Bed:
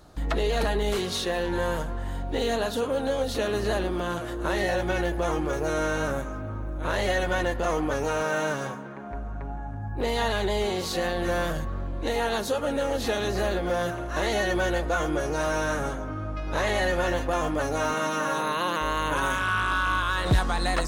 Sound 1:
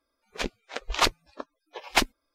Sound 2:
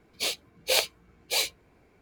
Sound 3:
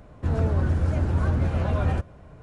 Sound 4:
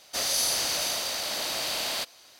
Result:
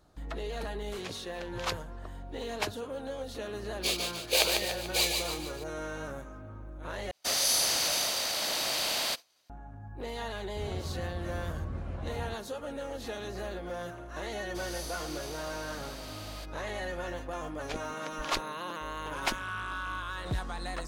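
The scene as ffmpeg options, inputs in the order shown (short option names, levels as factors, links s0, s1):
-filter_complex "[1:a]asplit=2[s0][s1];[4:a]asplit=2[s2][s3];[0:a]volume=0.266[s4];[s0]afreqshift=74[s5];[2:a]aecho=1:1:146|292|438|584|730|876:0.596|0.292|0.143|0.0701|0.0343|0.0168[s6];[s2]agate=range=0.0224:threshold=0.00631:ratio=3:release=100:detection=peak[s7];[s3]tiltshelf=f=970:g=4[s8];[s4]asplit=2[s9][s10];[s9]atrim=end=7.114[s11];[s7]atrim=end=2.39,asetpts=PTS-STARTPTS,volume=0.944[s12];[s10]atrim=start=9.496[s13];[s5]atrim=end=2.34,asetpts=PTS-STARTPTS,volume=0.251,afade=t=in:d=0.004:c=hsin,afade=t=out:st=2.336:d=0.004:c=hsin,adelay=650[s14];[s6]atrim=end=2.01,asetpts=PTS-STARTPTS,volume=0.841,afade=t=in:d=0.004:c=hsin,afade=t=out:st=2.006:d=0.004:c=hsin,adelay=3630[s15];[3:a]atrim=end=2.42,asetpts=PTS-STARTPTS,volume=0.178,afade=t=in:d=0.004:c=hsin,afade=t=out:st=2.416:d=0.004:c=hsin,adelay=10330[s16];[s8]atrim=end=2.39,asetpts=PTS-STARTPTS,volume=0.224,afade=t=in:d=0.004:c=hsin,afade=t=out:st=2.386:d=0.004:c=hsin,adelay=14410[s17];[s1]atrim=end=2.34,asetpts=PTS-STARTPTS,volume=0.335,afade=t=in:d=0.004:c=hsin,afade=t=out:st=2.336:d=0.004:c=hsin,adelay=17300[s18];[s11][s12]acrossfade=d=0.004:c1=hsin:c2=hsin[s19];[s19][s13]acrossfade=d=0.004:c1=hsin:c2=hsin[s20];[s20][s14][s15][s16][s17][s18]amix=inputs=6:normalize=0"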